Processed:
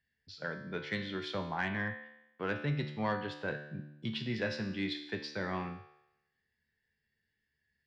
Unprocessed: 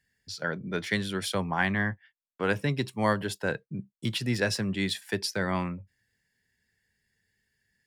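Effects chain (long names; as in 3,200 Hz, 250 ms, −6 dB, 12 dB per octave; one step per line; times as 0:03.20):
low-pass filter 4,400 Hz 24 dB per octave
tuned comb filter 74 Hz, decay 0.86 s, harmonics all, mix 80%
soft clipping −24 dBFS, distortion −24 dB
level +3.5 dB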